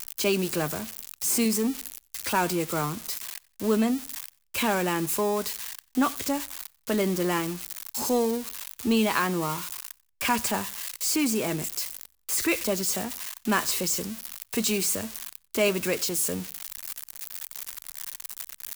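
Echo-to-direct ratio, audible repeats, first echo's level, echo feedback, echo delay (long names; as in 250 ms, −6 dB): −23.5 dB, 2, −24.0 dB, 30%, 91 ms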